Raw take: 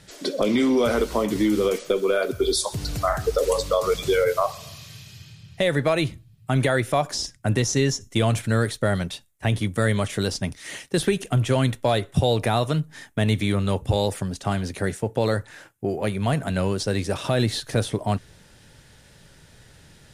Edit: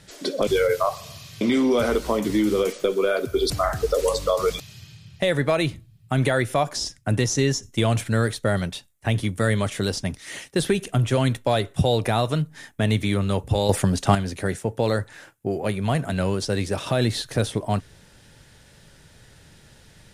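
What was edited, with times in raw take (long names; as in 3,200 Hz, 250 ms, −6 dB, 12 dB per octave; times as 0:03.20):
0:02.56–0:02.94: remove
0:04.04–0:04.98: move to 0:00.47
0:14.07–0:14.53: clip gain +7.5 dB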